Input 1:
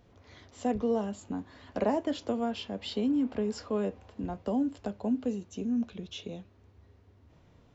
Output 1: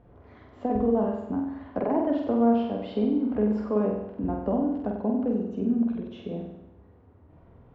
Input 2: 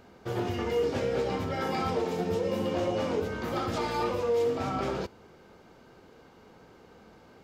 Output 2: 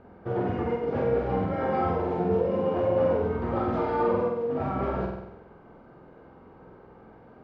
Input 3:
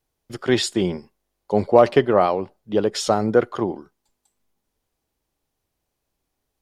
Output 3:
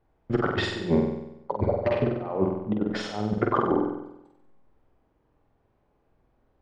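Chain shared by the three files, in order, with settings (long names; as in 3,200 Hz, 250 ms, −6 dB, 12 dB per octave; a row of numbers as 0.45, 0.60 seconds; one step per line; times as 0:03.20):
low-pass filter 1,300 Hz 12 dB per octave
compressor whose output falls as the input rises −28 dBFS, ratio −0.5
flutter between parallel walls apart 8.1 metres, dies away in 0.85 s
loudness normalisation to −27 LKFS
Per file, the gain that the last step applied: +4.0, +2.0, +1.0 decibels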